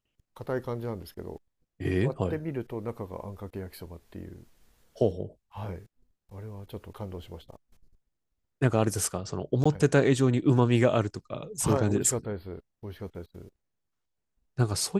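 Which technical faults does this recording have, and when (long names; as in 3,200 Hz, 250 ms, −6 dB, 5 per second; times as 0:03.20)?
0:09.64–0:09.65: drop-out 15 ms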